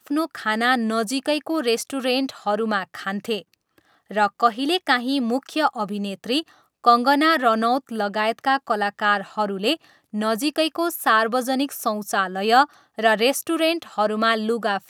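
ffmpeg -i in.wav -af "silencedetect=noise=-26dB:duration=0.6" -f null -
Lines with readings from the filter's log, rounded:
silence_start: 3.39
silence_end: 4.11 | silence_duration: 0.72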